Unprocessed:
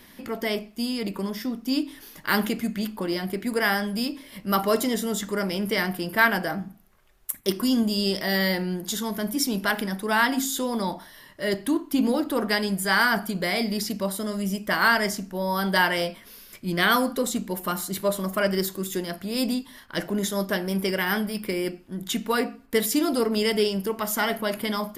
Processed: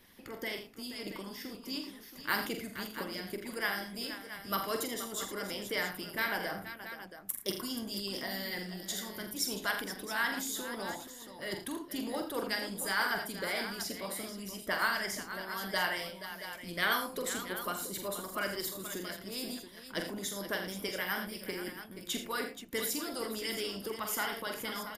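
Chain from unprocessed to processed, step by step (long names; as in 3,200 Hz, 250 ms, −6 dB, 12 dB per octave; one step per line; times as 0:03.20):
harmonic and percussive parts rebalanced harmonic −11 dB
multi-tap delay 45/82/111/478/677 ms −7/−10/−16.5/−11.5/−11.5 dB
level −7 dB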